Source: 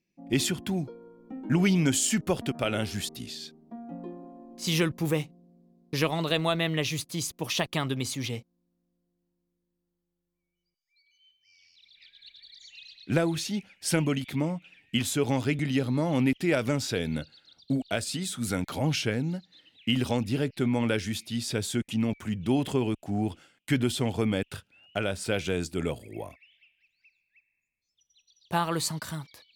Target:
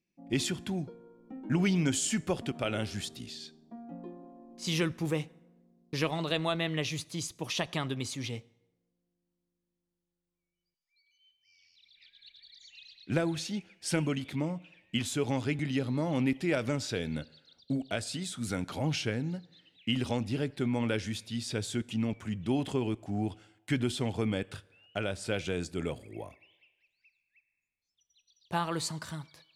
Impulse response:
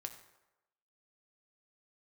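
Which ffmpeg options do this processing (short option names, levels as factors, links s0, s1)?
-filter_complex "[0:a]lowpass=9600,asplit=2[s0][s1];[1:a]atrim=start_sample=2205,asetrate=41013,aresample=44100[s2];[s1][s2]afir=irnorm=-1:irlink=0,volume=0.376[s3];[s0][s3]amix=inputs=2:normalize=0,volume=0.501"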